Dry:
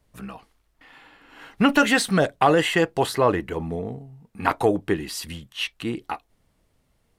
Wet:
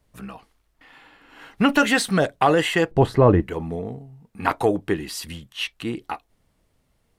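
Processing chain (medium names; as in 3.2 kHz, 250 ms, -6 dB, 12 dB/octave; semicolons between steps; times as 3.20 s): 2.91–3.42 s: tilt EQ -4 dB/octave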